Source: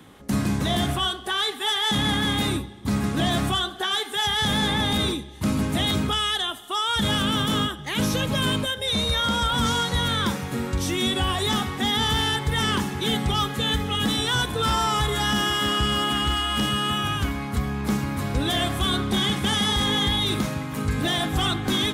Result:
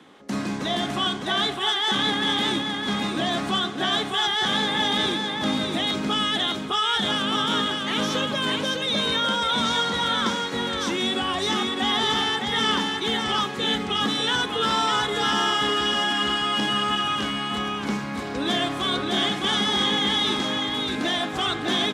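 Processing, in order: three-band isolator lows -22 dB, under 190 Hz, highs -19 dB, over 7400 Hz; echo 0.608 s -3.5 dB

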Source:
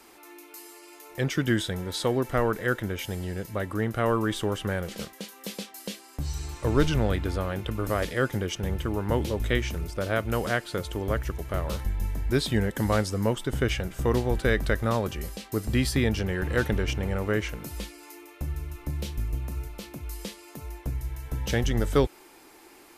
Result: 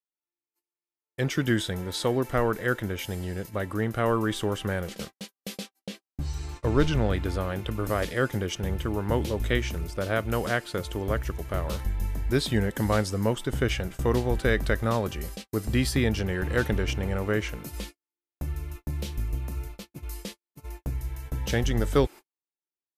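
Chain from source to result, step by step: gate -38 dBFS, range -54 dB; 5.78–7.15 high shelf 5000 Hz -> 10000 Hz -10.5 dB

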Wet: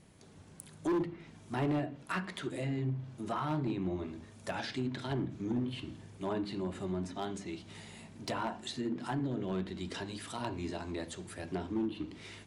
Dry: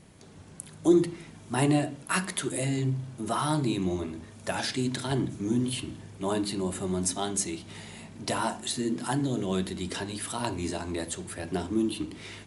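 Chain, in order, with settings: treble ducked by the level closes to 2300 Hz, closed at -24.5 dBFS; hard clip -21.5 dBFS, distortion -13 dB; gain -6 dB

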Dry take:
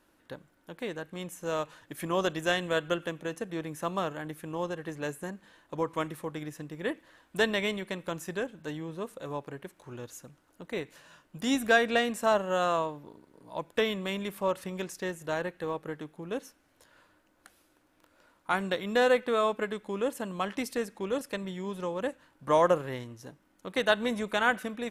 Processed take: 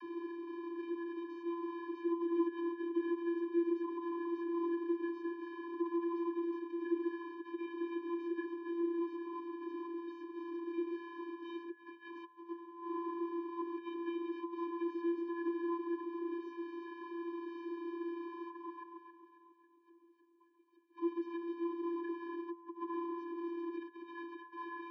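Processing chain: delta modulation 32 kbps, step -33 dBFS; 18.55–20.97 flipped gate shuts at -29 dBFS, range -30 dB; three-band isolator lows -14 dB, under 500 Hz, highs -15 dB, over 4200 Hz; echo with dull and thin repeats by turns 0.136 s, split 930 Hz, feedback 66%, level -4.5 dB; reverb RT60 1.9 s, pre-delay 95 ms, DRR 13.5 dB; negative-ratio compressor -33 dBFS, ratio -0.5; vocoder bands 32, square 340 Hz; tilt -4.5 dB/oct; gain -7.5 dB

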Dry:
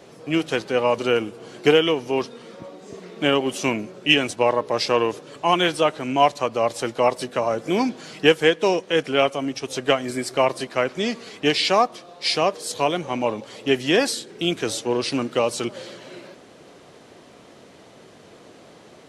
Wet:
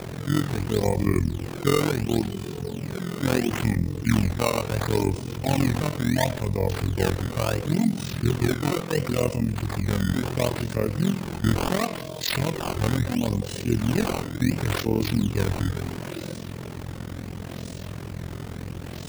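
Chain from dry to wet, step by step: repeated pitch sweeps -5.5 st, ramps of 1.451 s; tone controls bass +13 dB, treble +14 dB; harmonic-percussive split percussive -14 dB; bell 89 Hz +10.5 dB 0.6 oct; decimation with a swept rate 15×, swing 160% 0.72 Hz; flange 0.96 Hz, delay 9.6 ms, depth 5.4 ms, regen -83%; AM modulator 43 Hz, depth 80%; fast leveller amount 50%

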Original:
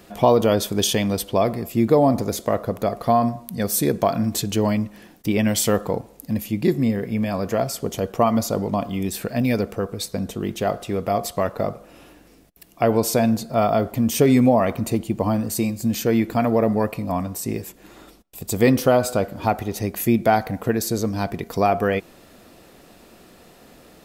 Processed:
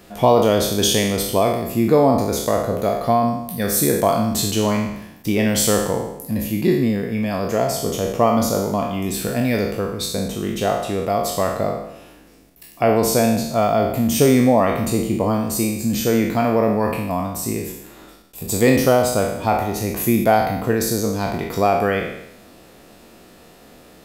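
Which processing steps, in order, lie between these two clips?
spectral trails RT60 0.83 s

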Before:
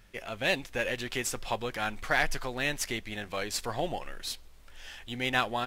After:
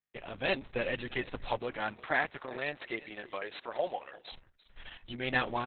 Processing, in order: 1.58–4.31 HPF 150 Hz -> 510 Hz 12 dB/oct; high shelf 4200 Hz -11.5 dB; gate -47 dBFS, range -51 dB; echo 0.343 s -18.5 dB; Opus 6 kbps 48000 Hz

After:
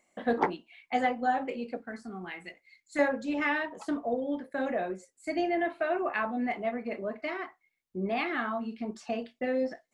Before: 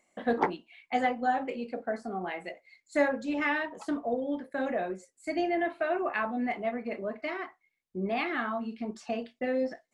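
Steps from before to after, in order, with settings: 1.77–2.99 bell 610 Hz -15 dB 1.1 oct

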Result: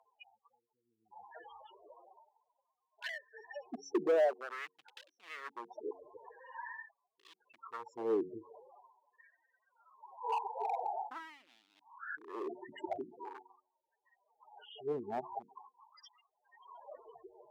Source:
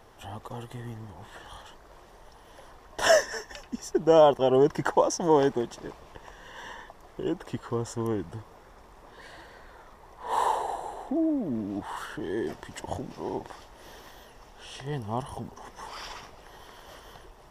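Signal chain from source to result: loudest bins only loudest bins 8; treble ducked by the level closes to 350 Hz, closed at -23.5 dBFS; hard clip -29.5 dBFS, distortion -8 dB; LFO high-pass sine 0.45 Hz 360–3500 Hz; de-hum 91.98 Hz, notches 5; gain -2.5 dB

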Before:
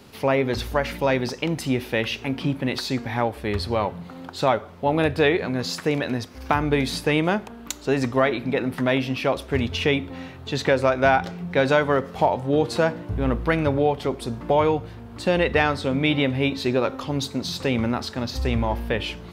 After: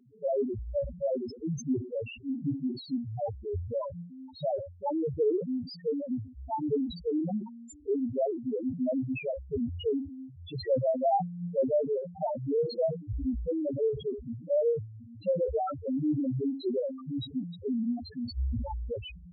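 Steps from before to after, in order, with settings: loudest bins only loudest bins 1; sustainer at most 120 dB/s

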